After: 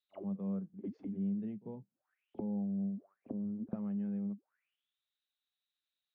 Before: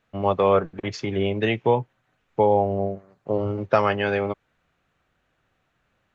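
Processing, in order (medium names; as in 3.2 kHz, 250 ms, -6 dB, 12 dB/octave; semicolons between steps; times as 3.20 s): auto-wah 200–3900 Hz, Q 12, down, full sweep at -23.5 dBFS; pre-echo 44 ms -19 dB; trim -2 dB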